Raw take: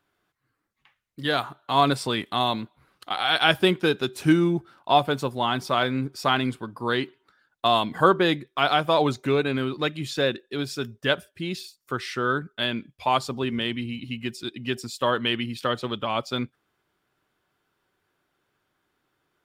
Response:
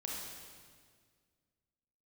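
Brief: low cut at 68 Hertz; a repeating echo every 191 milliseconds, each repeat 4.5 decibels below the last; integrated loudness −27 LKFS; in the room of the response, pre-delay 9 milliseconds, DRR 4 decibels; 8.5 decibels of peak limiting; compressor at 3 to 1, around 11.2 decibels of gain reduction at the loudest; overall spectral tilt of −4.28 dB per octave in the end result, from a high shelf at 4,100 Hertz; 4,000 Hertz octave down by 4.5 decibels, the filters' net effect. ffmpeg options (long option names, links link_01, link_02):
-filter_complex "[0:a]highpass=68,equalizer=frequency=4000:width_type=o:gain=-4,highshelf=frequency=4100:gain=-3.5,acompressor=threshold=-29dB:ratio=3,alimiter=limit=-22dB:level=0:latency=1,aecho=1:1:191|382|573|764|955|1146|1337|1528|1719:0.596|0.357|0.214|0.129|0.0772|0.0463|0.0278|0.0167|0.01,asplit=2[link_01][link_02];[1:a]atrim=start_sample=2205,adelay=9[link_03];[link_02][link_03]afir=irnorm=-1:irlink=0,volume=-4.5dB[link_04];[link_01][link_04]amix=inputs=2:normalize=0,volume=4.5dB"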